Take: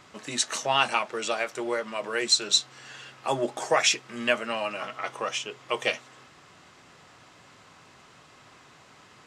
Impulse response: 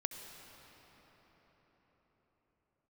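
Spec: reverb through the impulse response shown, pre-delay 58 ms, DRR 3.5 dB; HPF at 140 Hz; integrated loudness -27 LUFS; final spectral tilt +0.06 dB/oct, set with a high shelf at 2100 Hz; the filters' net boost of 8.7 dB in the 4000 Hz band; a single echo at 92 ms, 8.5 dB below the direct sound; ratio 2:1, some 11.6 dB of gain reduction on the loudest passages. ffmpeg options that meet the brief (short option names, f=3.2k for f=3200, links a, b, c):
-filter_complex "[0:a]highpass=140,highshelf=f=2.1k:g=8,equalizer=f=4k:t=o:g=3,acompressor=threshold=-29dB:ratio=2,aecho=1:1:92:0.376,asplit=2[a][b];[1:a]atrim=start_sample=2205,adelay=58[c];[b][c]afir=irnorm=-1:irlink=0,volume=-3.5dB[d];[a][d]amix=inputs=2:normalize=0,volume=-0.5dB"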